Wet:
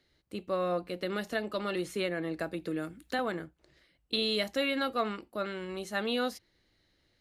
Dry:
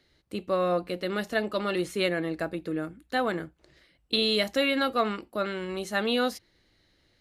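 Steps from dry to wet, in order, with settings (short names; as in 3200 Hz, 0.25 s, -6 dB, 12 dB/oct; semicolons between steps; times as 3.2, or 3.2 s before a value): 1.02–3.19 three-band squash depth 70%; gain -5 dB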